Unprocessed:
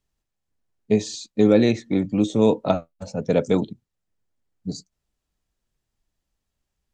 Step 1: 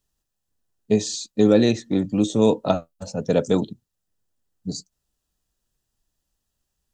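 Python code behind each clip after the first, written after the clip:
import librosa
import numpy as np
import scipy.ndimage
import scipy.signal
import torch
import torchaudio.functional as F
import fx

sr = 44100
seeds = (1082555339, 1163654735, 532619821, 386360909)

y = fx.high_shelf(x, sr, hz=5000.0, db=8.5)
y = fx.notch(y, sr, hz=2200.0, q=5.6)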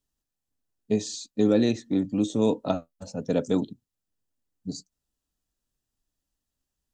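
y = fx.peak_eq(x, sr, hz=270.0, db=7.0, octaves=0.33)
y = y * 10.0 ** (-6.5 / 20.0)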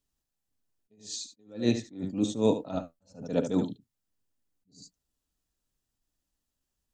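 y = x + 10.0 ** (-11.0 / 20.0) * np.pad(x, (int(75 * sr / 1000.0), 0))[:len(x)]
y = fx.attack_slew(y, sr, db_per_s=160.0)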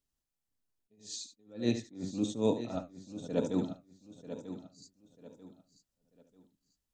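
y = fx.echo_feedback(x, sr, ms=941, feedback_pct=31, wet_db=-11.5)
y = y * 10.0 ** (-4.5 / 20.0)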